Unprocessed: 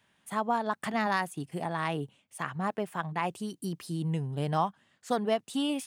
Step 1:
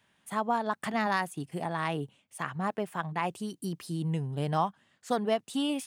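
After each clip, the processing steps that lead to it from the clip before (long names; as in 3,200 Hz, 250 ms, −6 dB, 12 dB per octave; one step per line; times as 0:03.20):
no processing that can be heard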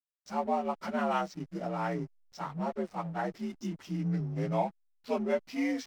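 partials spread apart or drawn together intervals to 85%
slack as between gear wheels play −44 dBFS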